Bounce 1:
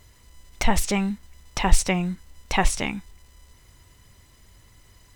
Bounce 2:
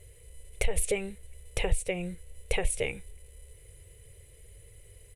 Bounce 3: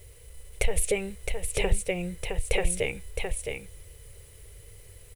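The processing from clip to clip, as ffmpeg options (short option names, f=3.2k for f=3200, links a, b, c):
-af "acompressor=threshold=-22dB:ratio=8,firequalizer=gain_entry='entry(100,0);entry(160,-5);entry(220,-22);entry(460,10);entry(680,-8);entry(1000,-19);entry(2300,-2);entry(5300,-16);entry(10000,9);entry(15000,-17)':delay=0.05:min_phase=1,volume=1.5dB"
-af "acrusher=bits=9:mix=0:aa=0.000001,aecho=1:1:664:0.531,volume=2.5dB"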